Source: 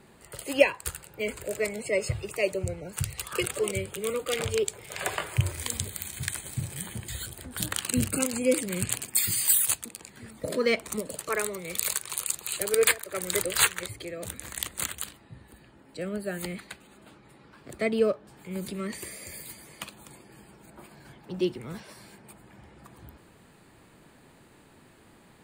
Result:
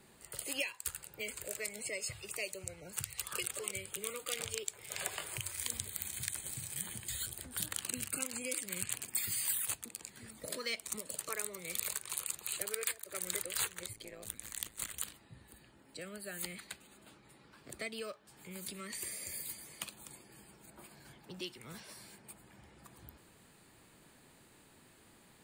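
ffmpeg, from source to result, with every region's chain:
-filter_complex "[0:a]asettb=1/sr,asplit=3[a][b][c];[a]atrim=end=13.934[d];[b]atrim=start=13.93:end=14.94,asetpts=PTS-STARTPTS,afade=t=in:d=0.004:c=qsin,afade=t=out:st=1.006:d=0.004:c=qsin,aeval=exprs='if(lt(val(0),0),0.708*val(0),val(0))':c=same,tremolo=f=110:d=0.788[e];[c]atrim=start=14.936[f];[d][e]acrossfade=d=0.004:c1=hsin:c2=qsin[g];[g][f]acrossfade=d=0.004:c1=qsin:c2=hsin,highshelf=f=3k:g=9,acrossover=split=850|2800[h][i][j];[h]acompressor=threshold=-39dB:ratio=4[k];[i]acompressor=threshold=-37dB:ratio=4[l];[j]acompressor=threshold=-27dB:ratio=4[m];[k][l][m]amix=inputs=3:normalize=0,volume=-8dB"

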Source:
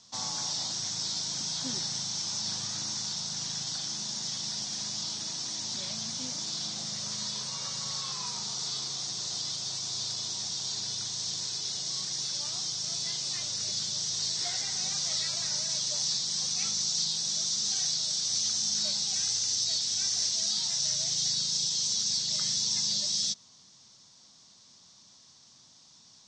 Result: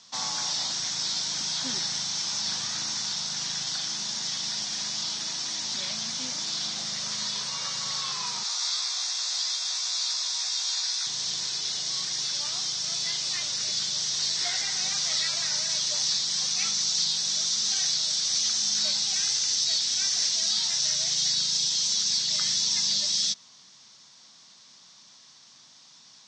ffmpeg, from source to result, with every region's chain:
-filter_complex "[0:a]asettb=1/sr,asplit=3[a][b][c];[a]atrim=end=8.434[d];[b]atrim=start=8.43:end=11.07,asetpts=PTS-STARTPTS,afade=t=in:d=0.004:c=qsin,afade=t=out:st=2.636:d=0.004:c=qsin,highpass=840,bandreject=f=3k:w=10,asplit=2[e][f];[f]adelay=16,volume=-3dB[g];[e][g]amix=inputs=2:normalize=0,atrim=end_sample=116424[h];[c]atrim=start=11.066[i];[d][h]acrossfade=d=0.004:c1=hsin:c2=qsin[j];[j][i]acrossfade=d=0.004:c1=qsin:c2=hsin,highpass=130,equalizer=f=2k:w=0.55:g=9"

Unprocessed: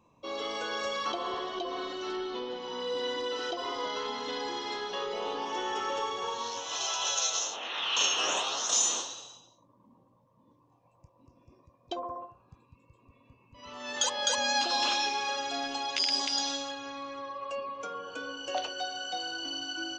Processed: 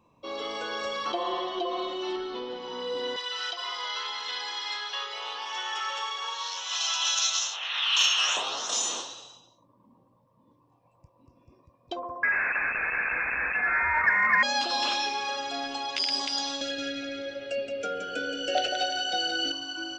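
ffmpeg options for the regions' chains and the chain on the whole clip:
-filter_complex "[0:a]asettb=1/sr,asplit=3[a][b][c];[a]atrim=end=1.134[d];[b]atrim=start=1.13:end=2.16,asetpts=PTS-STARTPTS,afade=t=in:d=0.004:c=qsin,afade=t=out:st=1.026:d=0.004:c=qsin,bass=f=250:g=-6,treble=f=4k:g=-3,aecho=1:1:5.7:0.86,atrim=end_sample=45423[e];[c]atrim=start=2.156[f];[d][e]acrossfade=d=0.004:c1=hsin:c2=qsin[g];[g][f]acrossfade=d=0.004:c1=qsin:c2=hsin,asettb=1/sr,asplit=3[h][i][j];[h]atrim=end=3.164[k];[i]atrim=start=3.16:end=8.37,asetpts=PTS-STARTPTS,afade=t=in:d=0.004:c=qsin,afade=t=out:st=5.206:d=0.004:c=qsin,highpass=1.4k,acontrast=32[l];[j]atrim=start=8.366[m];[k][l]acrossfade=d=0.004:c1=hsin:c2=qsin[n];[n][m]acrossfade=d=0.004:c1=qsin:c2=hsin,asettb=1/sr,asplit=3[o][p][q];[o]atrim=end=12.234[r];[p]atrim=start=12.23:end=14.43,asetpts=PTS-STARTPTS,afade=t=in:d=0.004:c=qsin,afade=t=out:st=2.196:d=0.004:c=qsin,aeval=exprs='val(0)+0.5*0.0376*sgn(val(0))':c=same,equalizer=f=1.1k:t=o:w=1.6:g=10.5,lowpass=f=2.3k:t=q:w=0.5098,lowpass=f=2.3k:t=q:w=0.6013,lowpass=f=2.3k:t=q:w=0.9,lowpass=f=2.3k:t=q:w=2.563,afreqshift=-2700[s];[q]atrim=start=14.426[t];[r][s]acrossfade=d=0.004:c1=hsin:c2=qsin[u];[u][t]acrossfade=d=0.004:c1=qsin:c2=hsin,asettb=1/sr,asplit=3[v][w][x];[v]atrim=end=16.614[y];[w]atrim=start=16.61:end=19.52,asetpts=PTS-STARTPTS,afade=t=in:d=0.004:c=qsin,afade=t=out:st=2.906:d=0.004:c=qsin,acontrast=50,asuperstop=centerf=1000:order=12:qfactor=1.9,aecho=1:1:172|344|516|688:0.501|0.17|0.0579|0.0197,atrim=end_sample=128331[z];[x]atrim=start=19.516[aa];[y][z]acrossfade=d=0.004:c1=hsin:c2=qsin[ab];[ab][aa]acrossfade=d=0.004:c1=qsin:c2=hsin,equalizer=f=6.5k:t=o:w=0.22:g=-7,acontrast=51,volume=-5dB"

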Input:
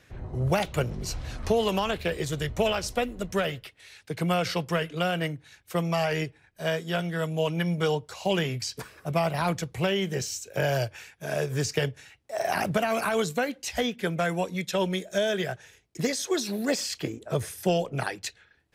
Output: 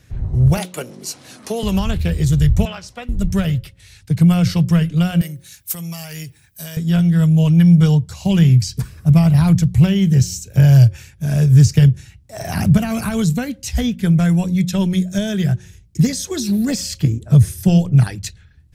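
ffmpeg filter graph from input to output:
-filter_complex "[0:a]asettb=1/sr,asplit=3[a][b][c];[a]atrim=end=0.574[d];[b]atrim=start=0.57:end=1.63,asetpts=PTS-STARTPTS,afade=t=in:d=0.004:c=qsin,afade=t=out:st=1.056:d=0.004:c=qsin,highpass=f=270:w=0.5412,highpass=f=270:w=1.3066,equalizer=f=10k:t=o:w=0.45:g=6.5[e];[c]atrim=start=1.626[f];[d][e]acrossfade=d=0.004:c1=hsin:c2=qsin[g];[g][f]acrossfade=d=0.004:c1=qsin:c2=hsin,asettb=1/sr,asplit=3[h][i][j];[h]atrim=end=2.654[k];[i]atrim=start=2.65:end=3.09,asetpts=PTS-STARTPTS,afade=t=in:d=0.004:c=qsin,afade=t=out:st=0.436:d=0.004:c=qsin,highpass=870,aemphasis=mode=reproduction:type=riaa[l];[j]atrim=start=3.086[m];[k][l]acrossfade=d=0.004:c1=hsin:c2=qsin[n];[n][m]acrossfade=d=0.004:c1=qsin:c2=hsin,asettb=1/sr,asplit=3[o][p][q];[o]atrim=end=5.214[r];[p]atrim=start=5.21:end=6.77,asetpts=PTS-STARTPTS,afade=t=in:d=0.004:c=qsin,afade=t=out:st=1.556:d=0.004:c=qsin,acompressor=threshold=-36dB:ratio=3:attack=3.2:release=140:knee=1:detection=peak,aemphasis=mode=production:type=riaa[s];[q]atrim=start=6.766[t];[r][s]acrossfade=d=0.004:c1=hsin:c2=qsin[u];[u][t]acrossfade=d=0.004:c1=qsin:c2=hsin,bass=f=250:g=14,treble=f=4k:g=8,bandreject=f=180.8:t=h:w=4,bandreject=f=361.6:t=h:w=4,bandreject=f=542.4:t=h:w=4,asubboost=boost=4:cutoff=210"

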